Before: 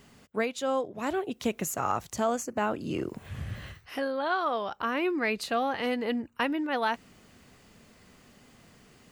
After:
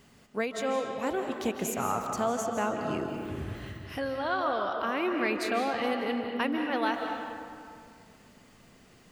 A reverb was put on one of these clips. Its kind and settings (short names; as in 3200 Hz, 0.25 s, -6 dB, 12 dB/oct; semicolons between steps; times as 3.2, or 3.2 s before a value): digital reverb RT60 2.3 s, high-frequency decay 0.6×, pre-delay 0.115 s, DRR 3 dB; gain -2 dB